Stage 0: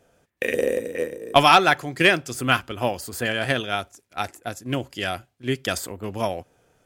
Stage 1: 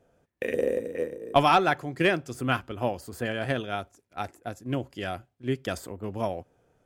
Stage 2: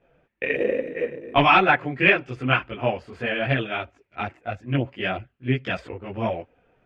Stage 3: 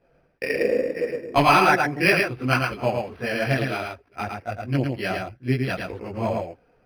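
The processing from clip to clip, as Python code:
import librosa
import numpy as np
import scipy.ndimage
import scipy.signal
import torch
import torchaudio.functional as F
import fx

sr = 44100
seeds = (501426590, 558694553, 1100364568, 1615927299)

y1 = fx.tilt_shelf(x, sr, db=5.0, hz=1500.0)
y1 = y1 * 10.0 ** (-7.5 / 20.0)
y2 = fx.lowpass_res(y1, sr, hz=2500.0, q=2.8)
y2 = fx.chorus_voices(y2, sr, voices=4, hz=0.74, base_ms=19, depth_ms=4.6, mix_pct=65)
y2 = y2 * 10.0 ** (5.5 / 20.0)
y3 = y2 + 10.0 ** (-4.0 / 20.0) * np.pad(y2, (int(110 * sr / 1000.0), 0))[:len(y2)]
y3 = np.interp(np.arange(len(y3)), np.arange(len(y3))[::6], y3[::6])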